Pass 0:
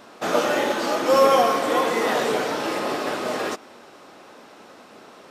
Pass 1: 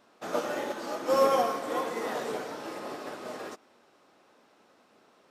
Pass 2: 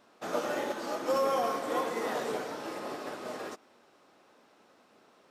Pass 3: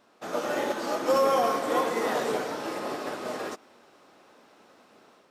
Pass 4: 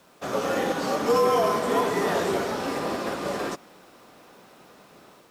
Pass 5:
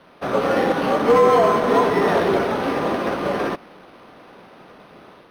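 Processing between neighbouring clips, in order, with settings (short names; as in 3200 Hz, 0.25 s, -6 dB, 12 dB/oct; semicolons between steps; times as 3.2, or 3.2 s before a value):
dynamic EQ 2900 Hz, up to -4 dB, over -35 dBFS, Q 1; upward expander 1.5:1, over -33 dBFS; gain -6 dB
limiter -20 dBFS, peak gain reduction 8 dB
AGC gain up to 5.5 dB
in parallel at -2 dB: limiter -25 dBFS, peak gain reduction 10.5 dB; on the sum: bit-crush 10-bit; frequency shift -52 Hz
decimation joined by straight lines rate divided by 6×; gain +7 dB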